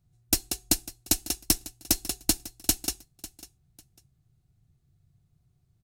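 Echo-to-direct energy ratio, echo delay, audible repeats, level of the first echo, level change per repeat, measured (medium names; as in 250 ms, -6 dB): -17.5 dB, 548 ms, 2, -17.5 dB, -12.5 dB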